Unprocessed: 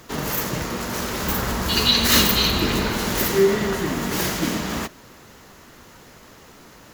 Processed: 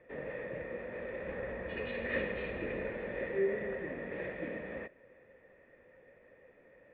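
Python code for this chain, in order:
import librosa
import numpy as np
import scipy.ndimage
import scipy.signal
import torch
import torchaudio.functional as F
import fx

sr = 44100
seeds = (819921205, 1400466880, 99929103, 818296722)

y = fx.formant_cascade(x, sr, vowel='e')
y = F.gain(torch.from_numpy(y), -1.5).numpy()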